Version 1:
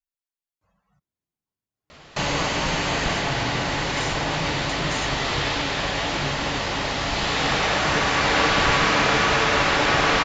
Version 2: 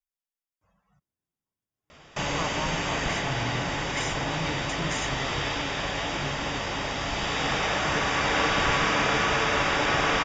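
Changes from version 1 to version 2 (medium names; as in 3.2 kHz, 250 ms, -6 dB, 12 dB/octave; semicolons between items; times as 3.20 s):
background -4.5 dB; master: add Butterworth band-stop 4.2 kHz, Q 6.7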